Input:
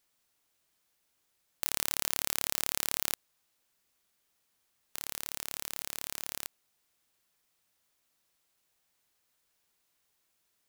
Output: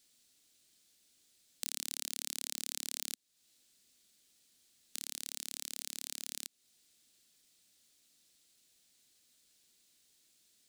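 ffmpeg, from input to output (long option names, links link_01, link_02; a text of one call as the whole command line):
ffmpeg -i in.wav -af "equalizer=frequency=250:width_type=o:width=1:gain=8,equalizer=frequency=1000:width_type=o:width=1:gain=-9,equalizer=frequency=4000:width_type=o:width=1:gain=8,equalizer=frequency=8000:width_type=o:width=1:gain=8,acompressor=threshold=-40dB:ratio=2.5,volume=1dB" out.wav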